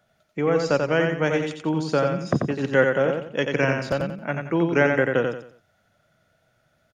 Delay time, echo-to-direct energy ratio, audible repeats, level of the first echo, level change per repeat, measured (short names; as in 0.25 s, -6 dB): 89 ms, -4.0 dB, 4, -4.5 dB, -10.0 dB